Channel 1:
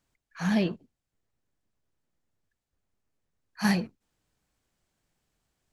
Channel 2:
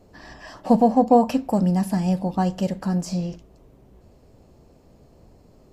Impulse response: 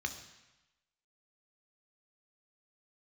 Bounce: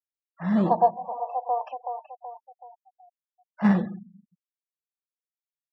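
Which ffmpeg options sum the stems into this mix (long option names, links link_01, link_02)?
-filter_complex "[0:a]dynaudnorm=framelen=360:gausssize=3:maxgain=9dB,acrusher=samples=12:mix=1:aa=0.000001,volume=-3dB,asplit=3[link_01][link_02][link_03];[link_02]volume=-8.5dB[link_04];[1:a]highpass=frequency=690:width=0.5412,highpass=frequency=690:width=1.3066,dynaudnorm=framelen=300:gausssize=5:maxgain=7.5dB,volume=0.5dB,asplit=3[link_05][link_06][link_07];[link_05]atrim=end=1.5,asetpts=PTS-STARTPTS,afade=type=out:start_time=1.496:duration=0.004:curve=hsin[link_08];[link_06]atrim=start=1.5:end=3.36,asetpts=PTS-STARTPTS,volume=0[link_09];[link_07]atrim=start=3.36,asetpts=PTS-STARTPTS,afade=type=in:duration=0.004:curve=hsin[link_10];[link_08][link_09][link_10]concat=n=3:v=0:a=1,asplit=3[link_11][link_12][link_13];[link_12]volume=-17dB[link_14];[link_13]volume=-12.5dB[link_15];[link_03]apad=whole_len=252607[link_16];[link_11][link_16]sidechaingate=range=-16dB:threshold=-47dB:ratio=16:detection=peak[link_17];[2:a]atrim=start_sample=2205[link_18];[link_04][link_14]amix=inputs=2:normalize=0[link_19];[link_19][link_18]afir=irnorm=-1:irlink=0[link_20];[link_15]aecho=0:1:377|754|1131|1508|1885|2262:1|0.45|0.202|0.0911|0.041|0.0185[link_21];[link_01][link_17][link_20][link_21]amix=inputs=4:normalize=0,highpass=120,afftfilt=real='re*gte(hypot(re,im),0.0158)':imag='im*gte(hypot(re,im),0.0158)':win_size=1024:overlap=0.75,lowpass=1700"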